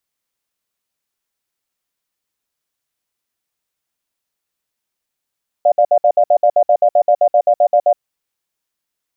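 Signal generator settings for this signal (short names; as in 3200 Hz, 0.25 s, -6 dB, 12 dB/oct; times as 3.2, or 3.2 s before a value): cadence 594 Hz, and 702 Hz, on 0.07 s, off 0.06 s, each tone -10.5 dBFS 2.28 s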